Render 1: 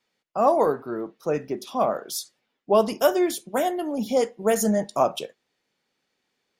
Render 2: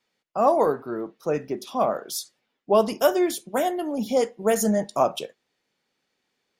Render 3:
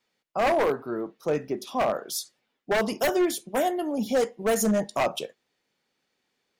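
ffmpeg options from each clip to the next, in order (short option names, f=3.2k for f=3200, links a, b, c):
-af anull
-af "acontrast=51,aeval=exprs='0.299*(abs(mod(val(0)/0.299+3,4)-2)-1)':c=same,volume=-6.5dB"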